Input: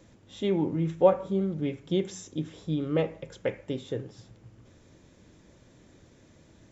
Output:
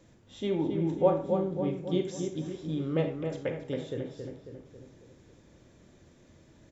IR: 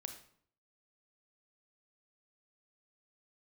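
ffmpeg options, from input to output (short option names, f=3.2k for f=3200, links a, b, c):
-filter_complex "[0:a]asettb=1/sr,asplit=3[a][b][c];[a]atrim=end=0.674[d];[b]atrim=start=0.67:end=1.77,asetpts=PTS-STARTPTS,afade=t=in:d=0.004:c=qsin,afade=t=out:st=1.096:d=0.004:c=qsin,equalizer=f=2.1k:t=o:w=1.6:g=-4[e];[c]atrim=start=1.766[f];[d][e]acrossfade=d=0.004:c1=hsin:c2=qsin[g];[g][f]acrossfade=d=0.004:c1=qsin:c2=hsin,asplit=2[h][i];[i]adelay=273,lowpass=f=2.2k:p=1,volume=-5.5dB,asplit=2[j][k];[k]adelay=273,lowpass=f=2.2k:p=1,volume=0.54,asplit=2[l][m];[m]adelay=273,lowpass=f=2.2k:p=1,volume=0.54,asplit=2[n][o];[o]adelay=273,lowpass=f=2.2k:p=1,volume=0.54,asplit=2[p][q];[q]adelay=273,lowpass=f=2.2k:p=1,volume=0.54,asplit=2[r][s];[s]adelay=273,lowpass=f=2.2k:p=1,volume=0.54,asplit=2[t][u];[u]adelay=273,lowpass=f=2.2k:p=1,volume=0.54[v];[h][j][l][n][p][r][t][v]amix=inputs=8:normalize=0[w];[1:a]atrim=start_sample=2205,afade=t=out:st=0.16:d=0.01,atrim=end_sample=7497,asetrate=48510,aresample=44100[x];[w][x]afir=irnorm=-1:irlink=0,volume=1.5dB"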